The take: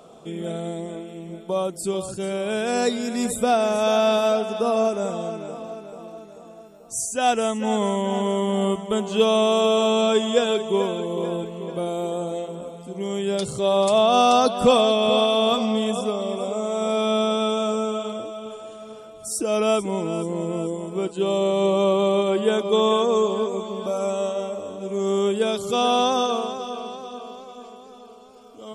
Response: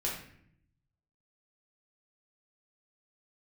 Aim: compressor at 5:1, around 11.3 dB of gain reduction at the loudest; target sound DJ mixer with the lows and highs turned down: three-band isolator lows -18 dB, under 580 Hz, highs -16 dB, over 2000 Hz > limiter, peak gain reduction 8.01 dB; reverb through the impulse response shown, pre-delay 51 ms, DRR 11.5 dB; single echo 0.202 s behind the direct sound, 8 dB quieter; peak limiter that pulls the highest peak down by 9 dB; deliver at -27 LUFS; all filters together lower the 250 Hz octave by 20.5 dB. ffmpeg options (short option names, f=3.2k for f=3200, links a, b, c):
-filter_complex "[0:a]equalizer=f=250:t=o:g=-6.5,acompressor=threshold=-26dB:ratio=5,alimiter=level_in=1dB:limit=-24dB:level=0:latency=1,volume=-1dB,aecho=1:1:202:0.398,asplit=2[a][b];[1:a]atrim=start_sample=2205,adelay=51[c];[b][c]afir=irnorm=-1:irlink=0,volume=-16dB[d];[a][d]amix=inputs=2:normalize=0,acrossover=split=580 2000:gain=0.126 1 0.158[e][f][g];[e][f][g]amix=inputs=3:normalize=0,volume=14dB,alimiter=limit=-18.5dB:level=0:latency=1"